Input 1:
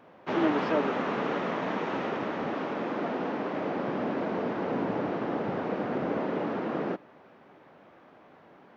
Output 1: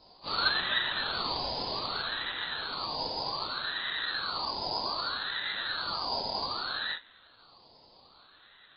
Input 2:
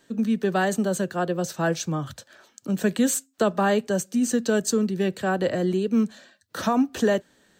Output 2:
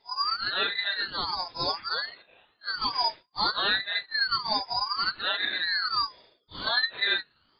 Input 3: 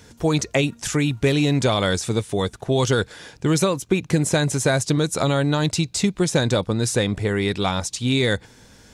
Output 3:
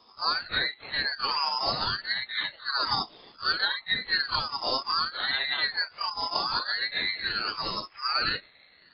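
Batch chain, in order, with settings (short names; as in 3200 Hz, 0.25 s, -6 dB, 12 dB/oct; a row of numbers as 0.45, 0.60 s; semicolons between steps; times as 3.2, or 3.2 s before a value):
phase scrambler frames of 0.1 s; inverted band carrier 3200 Hz; ring modulator with a swept carrier 1500 Hz, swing 35%, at 0.64 Hz; normalise peaks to -12 dBFS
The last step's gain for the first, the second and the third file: -0.5, -2.0, -5.5 dB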